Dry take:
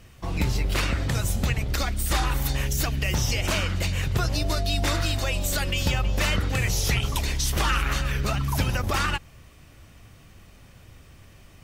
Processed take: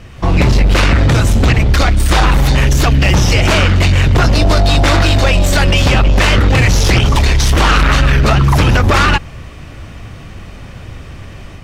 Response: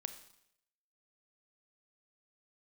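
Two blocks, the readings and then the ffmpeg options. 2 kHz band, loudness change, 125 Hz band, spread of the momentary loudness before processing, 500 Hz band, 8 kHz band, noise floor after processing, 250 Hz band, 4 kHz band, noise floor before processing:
+14.0 dB, +14.5 dB, +15.0 dB, 2 LU, +16.0 dB, +8.0 dB, -32 dBFS, +16.0 dB, +12.0 dB, -51 dBFS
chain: -af "dynaudnorm=f=110:g=3:m=4.5dB,aeval=exprs='0.398*sin(PI/2*2.51*val(0)/0.398)':c=same,aemphasis=mode=reproduction:type=50fm,volume=2.5dB"

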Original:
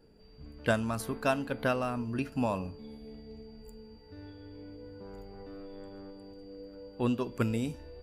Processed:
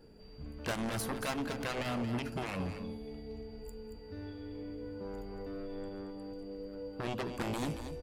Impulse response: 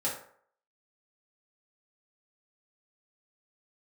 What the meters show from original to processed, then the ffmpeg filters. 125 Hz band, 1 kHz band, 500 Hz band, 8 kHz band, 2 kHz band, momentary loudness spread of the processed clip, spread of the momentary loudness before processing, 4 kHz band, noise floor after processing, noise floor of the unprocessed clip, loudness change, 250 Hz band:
-4.0 dB, -4.0 dB, -5.0 dB, +2.0 dB, -4.0 dB, 11 LU, 18 LU, +2.0 dB, -51 dBFS, -55 dBFS, -7.0 dB, -4.0 dB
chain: -af "aeval=exprs='0.168*(cos(1*acos(clip(val(0)/0.168,-1,1)))-cos(1*PI/2))+0.0596*(cos(7*acos(clip(val(0)/0.168,-1,1)))-cos(7*PI/2))':c=same,alimiter=level_in=2dB:limit=-24dB:level=0:latency=1:release=52,volume=-2dB,aecho=1:1:228:0.335"

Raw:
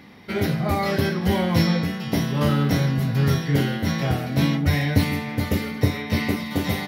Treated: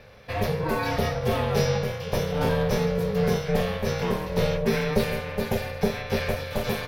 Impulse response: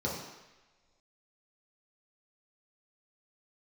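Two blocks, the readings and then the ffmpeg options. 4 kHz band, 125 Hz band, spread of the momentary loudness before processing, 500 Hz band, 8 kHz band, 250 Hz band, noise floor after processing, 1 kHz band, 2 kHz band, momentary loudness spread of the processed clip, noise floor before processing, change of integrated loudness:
-4.0 dB, -6.5 dB, 5 LU, +3.5 dB, -1.5 dB, -7.0 dB, -36 dBFS, -1.0 dB, -3.0 dB, 5 LU, -32 dBFS, -3.5 dB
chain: -af "asoftclip=type=tanh:threshold=-8.5dB,aeval=exprs='val(0)*sin(2*PI*310*n/s)':c=same"

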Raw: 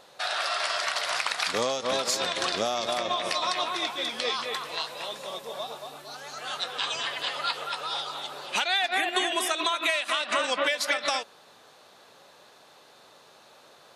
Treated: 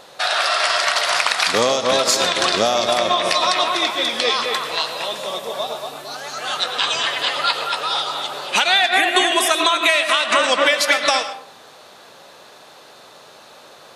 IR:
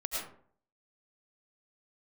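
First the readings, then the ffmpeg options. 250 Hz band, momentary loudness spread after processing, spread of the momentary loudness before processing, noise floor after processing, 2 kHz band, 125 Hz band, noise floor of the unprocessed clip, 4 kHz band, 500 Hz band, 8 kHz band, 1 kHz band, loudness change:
+10.0 dB, 11 LU, 11 LU, -45 dBFS, +10.5 dB, +10.0 dB, -55 dBFS, +10.0 dB, +10.5 dB, +10.0 dB, +10.0 dB, +10.5 dB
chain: -filter_complex "[0:a]asplit=2[a][b];[1:a]atrim=start_sample=2205[c];[b][c]afir=irnorm=-1:irlink=0,volume=-10.5dB[d];[a][d]amix=inputs=2:normalize=0,volume=8dB"

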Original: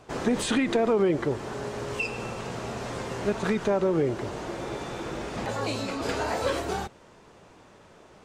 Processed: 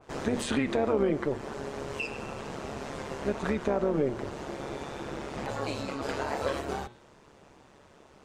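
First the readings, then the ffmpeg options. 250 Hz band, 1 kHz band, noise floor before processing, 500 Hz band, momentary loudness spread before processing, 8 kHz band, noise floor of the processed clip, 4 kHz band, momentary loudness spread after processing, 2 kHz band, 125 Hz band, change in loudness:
-3.5 dB, -3.5 dB, -54 dBFS, -3.5 dB, 11 LU, -5.5 dB, -57 dBFS, -5.0 dB, 11 LU, -4.0 dB, -4.0 dB, -3.5 dB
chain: -af "tremolo=f=140:d=0.71,bandreject=f=119.2:t=h:w=4,bandreject=f=238.4:t=h:w=4,bandreject=f=357.6:t=h:w=4,bandreject=f=476.8:t=h:w=4,bandreject=f=596:t=h:w=4,bandreject=f=715.2:t=h:w=4,bandreject=f=834.4:t=h:w=4,bandreject=f=953.6:t=h:w=4,bandreject=f=1.0728k:t=h:w=4,bandreject=f=1.192k:t=h:w=4,bandreject=f=1.3112k:t=h:w=4,bandreject=f=1.4304k:t=h:w=4,bandreject=f=1.5496k:t=h:w=4,bandreject=f=1.6688k:t=h:w=4,bandreject=f=1.788k:t=h:w=4,bandreject=f=1.9072k:t=h:w=4,bandreject=f=2.0264k:t=h:w=4,bandreject=f=2.1456k:t=h:w=4,bandreject=f=2.2648k:t=h:w=4,bandreject=f=2.384k:t=h:w=4,bandreject=f=2.5032k:t=h:w=4,bandreject=f=2.6224k:t=h:w=4,bandreject=f=2.7416k:t=h:w=4,bandreject=f=2.8608k:t=h:w=4,bandreject=f=2.98k:t=h:w=4,bandreject=f=3.0992k:t=h:w=4,bandreject=f=3.2184k:t=h:w=4,bandreject=f=3.3376k:t=h:w=4,bandreject=f=3.4568k:t=h:w=4,bandreject=f=3.576k:t=h:w=4,bandreject=f=3.6952k:t=h:w=4,bandreject=f=3.8144k:t=h:w=4,bandreject=f=3.9336k:t=h:w=4,bandreject=f=4.0528k:t=h:w=4,bandreject=f=4.172k:t=h:w=4,bandreject=f=4.2912k:t=h:w=4,bandreject=f=4.4104k:t=h:w=4,bandreject=f=4.5296k:t=h:w=4,adynamicequalizer=threshold=0.00562:dfrequency=2900:dqfactor=0.7:tfrequency=2900:tqfactor=0.7:attack=5:release=100:ratio=0.375:range=2:mode=cutabove:tftype=highshelf"

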